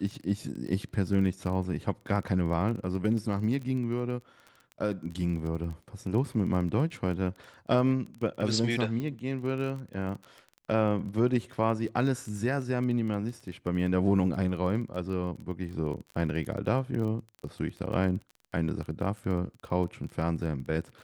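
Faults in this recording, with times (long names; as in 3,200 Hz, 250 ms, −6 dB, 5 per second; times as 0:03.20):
surface crackle 20 per second −36 dBFS
0:06.92: drop-out 3.2 ms
0:09.00: click −23 dBFS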